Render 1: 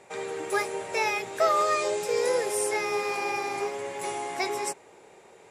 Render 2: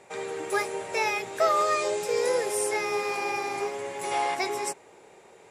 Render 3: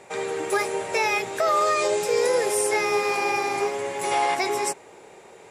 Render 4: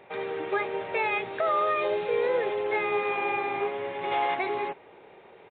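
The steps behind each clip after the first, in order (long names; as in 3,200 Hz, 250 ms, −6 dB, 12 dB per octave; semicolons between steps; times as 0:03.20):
gain on a spectral selection 0:04.11–0:04.35, 450–5,800 Hz +8 dB
brickwall limiter −18.5 dBFS, peak gain reduction 7 dB; level +5.5 dB
downsampling to 8,000 Hz; level −4 dB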